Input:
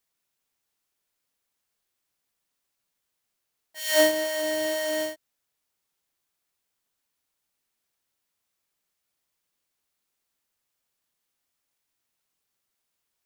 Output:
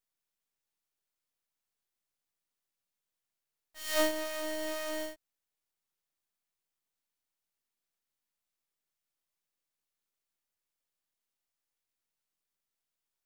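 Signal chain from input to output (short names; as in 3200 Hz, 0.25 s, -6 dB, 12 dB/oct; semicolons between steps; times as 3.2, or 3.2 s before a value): half-wave gain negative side -12 dB; gain -6 dB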